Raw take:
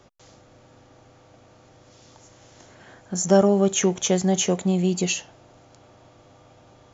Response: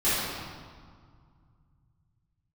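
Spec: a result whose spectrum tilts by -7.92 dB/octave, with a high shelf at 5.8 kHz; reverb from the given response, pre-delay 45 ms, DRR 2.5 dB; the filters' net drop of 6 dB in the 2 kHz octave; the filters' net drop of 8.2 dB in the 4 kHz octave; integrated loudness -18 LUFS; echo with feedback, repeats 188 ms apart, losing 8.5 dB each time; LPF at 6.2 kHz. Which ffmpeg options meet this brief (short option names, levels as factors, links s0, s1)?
-filter_complex "[0:a]lowpass=6200,equalizer=f=2000:t=o:g=-4.5,equalizer=f=4000:t=o:g=-6.5,highshelf=f=5800:g=-7.5,aecho=1:1:188|376|564|752:0.376|0.143|0.0543|0.0206,asplit=2[s0][s1];[1:a]atrim=start_sample=2205,adelay=45[s2];[s1][s2]afir=irnorm=-1:irlink=0,volume=0.141[s3];[s0][s3]amix=inputs=2:normalize=0,volume=1.19"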